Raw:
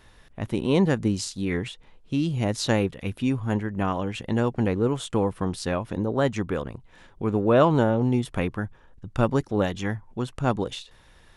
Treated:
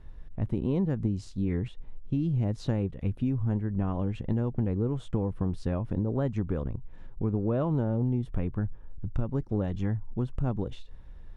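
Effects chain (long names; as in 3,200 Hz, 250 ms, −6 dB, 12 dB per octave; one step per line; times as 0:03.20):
spectral tilt −4 dB per octave
downward compressor 6 to 1, threshold −16 dBFS, peak gain reduction 12 dB
level −8 dB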